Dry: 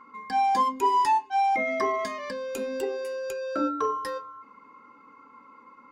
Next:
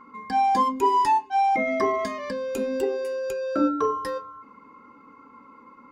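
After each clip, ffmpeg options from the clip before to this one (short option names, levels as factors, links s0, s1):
-af "lowshelf=f=450:g=9"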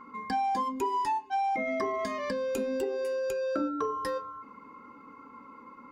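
-af "acompressor=threshold=0.0398:ratio=5"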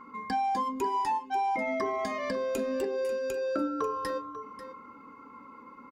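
-af "aecho=1:1:542:0.211"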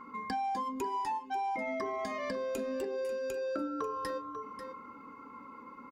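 -af "acompressor=threshold=0.0158:ratio=2"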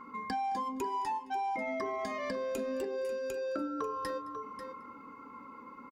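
-af "aecho=1:1:216:0.0668"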